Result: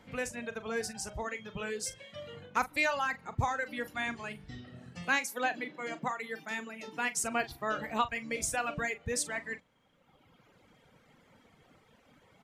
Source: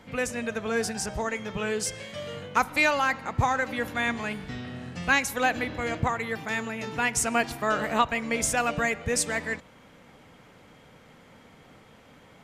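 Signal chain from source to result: 5.05–7.24 steep high-pass 160 Hz 48 dB/oct; reverb removal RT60 1.6 s; doubler 41 ms -13.5 dB; gain -6.5 dB

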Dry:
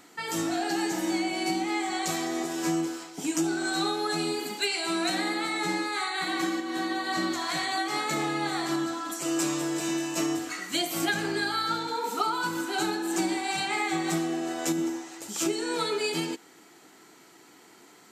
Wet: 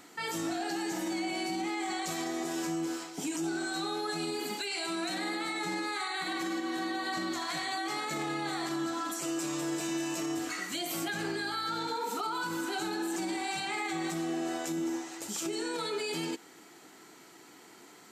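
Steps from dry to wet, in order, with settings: limiter -26 dBFS, peak gain reduction 11.5 dB

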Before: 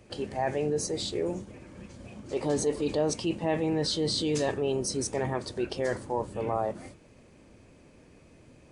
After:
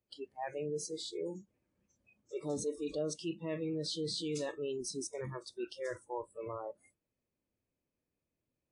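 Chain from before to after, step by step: spectral noise reduction 25 dB; gain -8.5 dB

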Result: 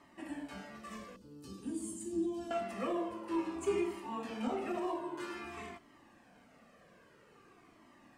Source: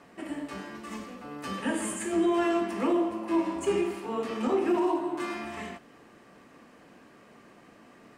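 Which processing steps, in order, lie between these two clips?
1.16–2.51 EQ curve 330 Hz 0 dB, 520 Hz -13 dB, 2000 Hz -24 dB, 4500 Hz -3 dB; cascading flanger falling 0.51 Hz; gain -2.5 dB

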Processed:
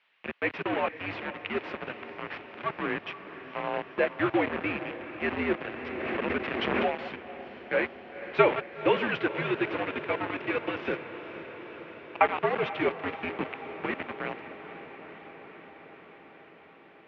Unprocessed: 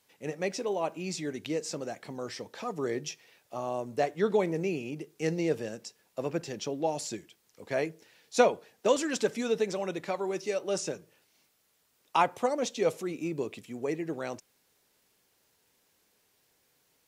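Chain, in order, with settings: reverse delay 0.118 s, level -13 dB; tilt shelf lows -7.5 dB, about 880 Hz; 10.67–12.21 negative-ratio compressor -35 dBFS, ratio -1; flange 0.78 Hz, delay 4.2 ms, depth 4 ms, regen +79%; bit-crush 6-bit; added noise violet -51 dBFS; mistuned SSB -87 Hz 210–2800 Hz; diffused feedback echo 0.485 s, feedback 75%, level -13 dB; 5.76–7 backwards sustainer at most 23 dB/s; gain +8 dB

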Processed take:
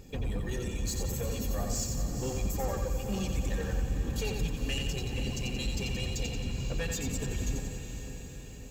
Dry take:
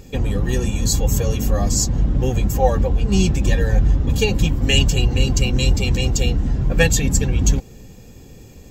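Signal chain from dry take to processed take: reverb removal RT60 1.8 s; limiter -13.5 dBFS, peak gain reduction 10.5 dB; soft clip -19.5 dBFS, distortion -14 dB; on a send: diffused feedback echo 0.474 s, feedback 61%, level -8 dB; on the sum: lo-fi delay 89 ms, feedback 55%, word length 9-bit, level -5 dB; gain -9 dB

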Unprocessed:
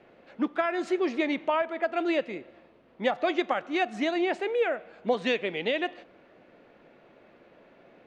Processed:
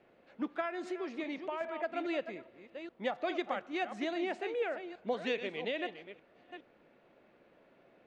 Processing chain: reverse delay 0.413 s, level -10 dB; 0.67–1.61 compressor, threshold -26 dBFS, peak gain reduction 5 dB; gain -8.5 dB

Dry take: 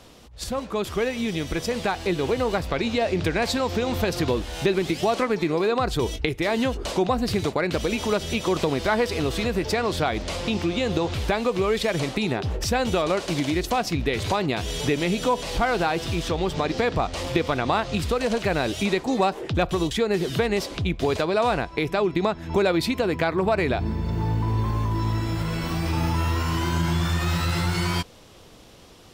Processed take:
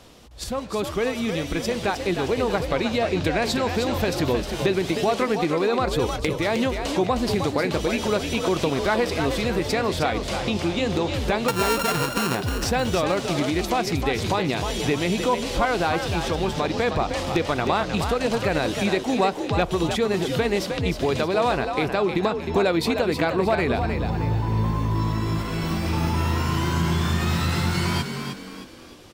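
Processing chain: 11.48–12.35 sample sorter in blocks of 32 samples; wavefolder -10.5 dBFS; frequency-shifting echo 0.31 s, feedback 40%, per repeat +52 Hz, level -7 dB

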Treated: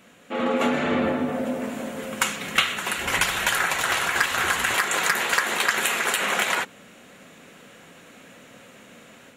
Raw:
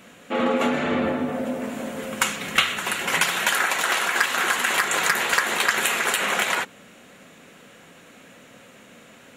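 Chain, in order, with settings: 2.97–4.75 octaver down 2 oct, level -1 dB; AGC gain up to 5.5 dB; gain -5 dB

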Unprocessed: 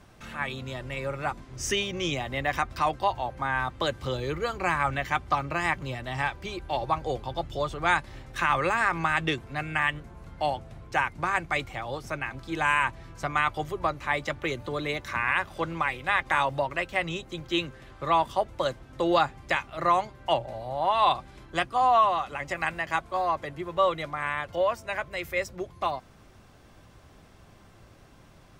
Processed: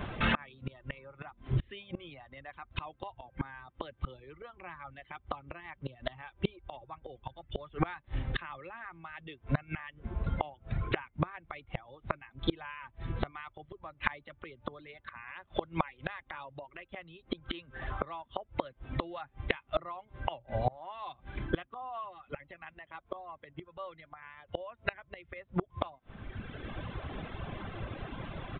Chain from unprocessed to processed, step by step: reverb removal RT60 1.2 s; in parallel at -1 dB: compressor, threshold -39 dBFS, peak gain reduction 19.5 dB; on the sum: flipped gate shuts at -26 dBFS, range -31 dB; downsampling 8000 Hz; gain +10.5 dB

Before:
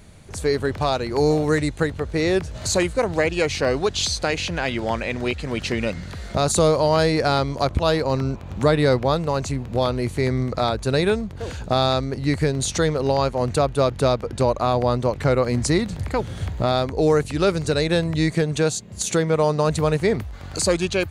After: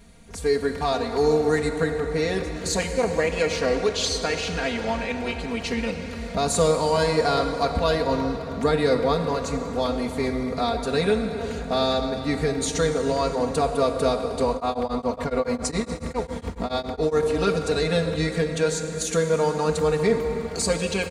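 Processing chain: comb 4.3 ms, depth 95%; plate-style reverb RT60 4.7 s, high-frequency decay 0.6×, pre-delay 0 ms, DRR 5 dB; 14.54–17.23 beating tremolo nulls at 7.2 Hz; gain -6 dB

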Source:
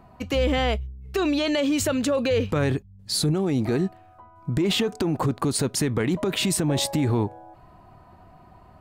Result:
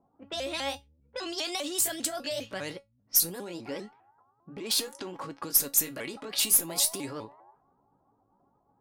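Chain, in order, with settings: repeated pitch sweeps +5 st, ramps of 0.2 s; low-pass opened by the level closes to 600 Hz, open at -23.5 dBFS; RIAA curve recording; tube stage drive 6 dB, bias 0.2; low-pass opened by the level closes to 940 Hz, open at -20 dBFS; high shelf 9600 Hz +7 dB; resonator 280 Hz, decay 0.17 s, harmonics all, mix 70%; gain -1 dB

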